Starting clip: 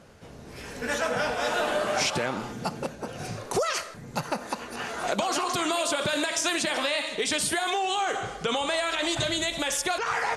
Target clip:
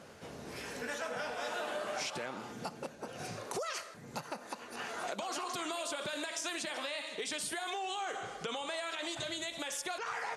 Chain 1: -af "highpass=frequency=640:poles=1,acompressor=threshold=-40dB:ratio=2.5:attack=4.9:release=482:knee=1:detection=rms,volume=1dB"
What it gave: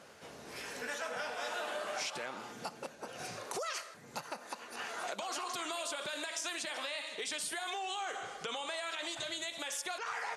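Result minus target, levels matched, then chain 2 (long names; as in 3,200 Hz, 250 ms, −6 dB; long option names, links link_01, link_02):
250 Hz band −4.5 dB
-af "highpass=frequency=220:poles=1,acompressor=threshold=-40dB:ratio=2.5:attack=4.9:release=482:knee=1:detection=rms,volume=1dB"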